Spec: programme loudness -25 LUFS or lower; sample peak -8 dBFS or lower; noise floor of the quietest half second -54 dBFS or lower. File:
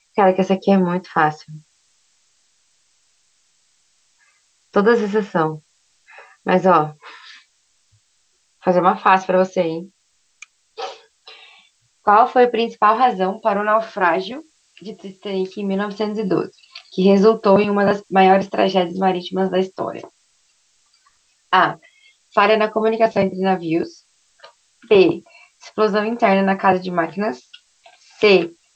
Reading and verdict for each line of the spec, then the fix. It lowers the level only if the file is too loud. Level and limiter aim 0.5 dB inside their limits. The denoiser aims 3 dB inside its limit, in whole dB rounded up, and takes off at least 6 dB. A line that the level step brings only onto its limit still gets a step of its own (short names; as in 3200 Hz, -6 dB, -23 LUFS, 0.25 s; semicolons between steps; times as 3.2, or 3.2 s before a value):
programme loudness -17.5 LUFS: fail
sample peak -2.0 dBFS: fail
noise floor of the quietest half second -64 dBFS: OK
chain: gain -8 dB